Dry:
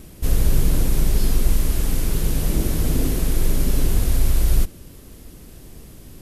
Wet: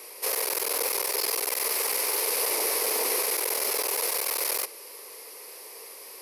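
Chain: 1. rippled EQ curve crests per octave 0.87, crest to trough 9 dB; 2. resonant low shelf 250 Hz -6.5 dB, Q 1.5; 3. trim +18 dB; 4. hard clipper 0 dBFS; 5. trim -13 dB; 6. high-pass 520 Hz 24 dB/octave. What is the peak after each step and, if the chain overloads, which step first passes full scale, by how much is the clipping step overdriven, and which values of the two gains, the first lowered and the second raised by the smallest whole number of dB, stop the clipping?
-3.5 dBFS, -9.0 dBFS, +9.0 dBFS, 0.0 dBFS, -13.0 dBFS, -12.0 dBFS; step 3, 9.0 dB; step 3 +9 dB, step 5 -4 dB

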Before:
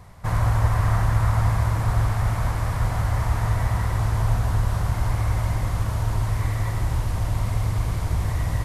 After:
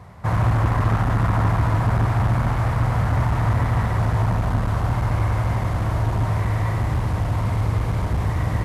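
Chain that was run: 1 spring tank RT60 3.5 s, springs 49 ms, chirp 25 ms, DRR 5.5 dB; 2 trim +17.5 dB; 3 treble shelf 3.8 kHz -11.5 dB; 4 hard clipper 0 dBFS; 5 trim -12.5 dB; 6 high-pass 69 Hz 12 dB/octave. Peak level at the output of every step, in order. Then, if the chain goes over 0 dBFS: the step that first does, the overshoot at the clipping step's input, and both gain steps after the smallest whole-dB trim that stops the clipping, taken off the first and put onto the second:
-8.0 dBFS, +9.5 dBFS, +9.5 dBFS, 0.0 dBFS, -12.5 dBFS, -7.5 dBFS; step 2, 9.5 dB; step 2 +7.5 dB, step 5 -2.5 dB

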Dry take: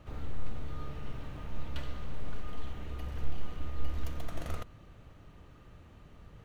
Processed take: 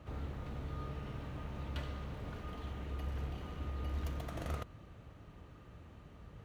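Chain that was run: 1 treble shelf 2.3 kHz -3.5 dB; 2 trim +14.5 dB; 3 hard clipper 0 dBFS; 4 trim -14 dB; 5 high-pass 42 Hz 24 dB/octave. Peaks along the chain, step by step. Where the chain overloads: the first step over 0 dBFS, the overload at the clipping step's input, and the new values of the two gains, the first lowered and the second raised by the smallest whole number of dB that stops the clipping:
-17.0 dBFS, -2.5 dBFS, -2.5 dBFS, -16.5 dBFS, -25.5 dBFS; nothing clips

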